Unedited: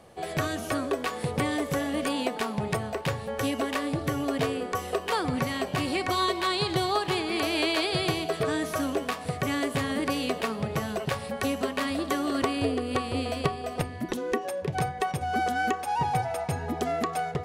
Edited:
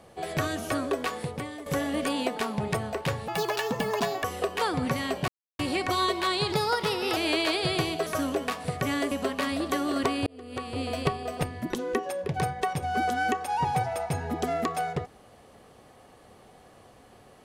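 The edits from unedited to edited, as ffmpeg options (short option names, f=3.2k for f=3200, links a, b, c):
-filter_complex "[0:a]asplit=10[a][b][c][d][e][f][g][h][i][j];[a]atrim=end=1.66,asetpts=PTS-STARTPTS,afade=t=out:st=1.13:d=0.53:c=qua:silence=0.237137[k];[b]atrim=start=1.66:end=3.284,asetpts=PTS-STARTPTS,afade=t=in:d=0.004:c=hsin:silence=0.237137[l];[c]atrim=start=3.28:end=4.75,asetpts=PTS-STARTPTS,asetrate=67473,aresample=44100[m];[d]atrim=start=4.746:end=5.79,asetpts=PTS-STARTPTS,afade=t=out:st=1.04:d=0.004:c=hsin,apad=pad_dur=0.31[n];[e]atrim=start=5.79:end=6.724,asetpts=PTS-STARTPTS,afade=t=in:d=0.004:c=hsin[o];[f]atrim=start=6.72:end=7.46,asetpts=PTS-STARTPTS,asetrate=50715,aresample=44100,atrim=end_sample=28377,asetpts=PTS-STARTPTS[p];[g]atrim=start=7.456:end=8.362[q];[h]atrim=start=8.668:end=9.722[r];[i]atrim=start=11.498:end=12.65,asetpts=PTS-STARTPTS,afade=t=out:st=1.148:d=0.004:c=hsin[s];[j]atrim=start=12.65,asetpts=PTS-STARTPTS,afade=t=in:d=0.71[t];[k][l]concat=n=2:v=0:a=1[u];[u][m]acrossfade=d=0.004:c1=hsin:c2=hsin[v];[n][o]concat=n=2:v=0:a=1[w];[v][w]acrossfade=d=0.004:c1=hsin:c2=hsin[x];[x][p]acrossfade=d=0.004:c1=hsin:c2=hsin[y];[y][q]acrossfade=d=0.004:c1=hsin:c2=hsin[z];[z][r]acrossfade=d=0.004:c1=hsin:c2=hsin[aa];[s][t]concat=n=2:v=0:a=1[ab];[aa][ab]acrossfade=d=0.004:c1=hsin:c2=hsin"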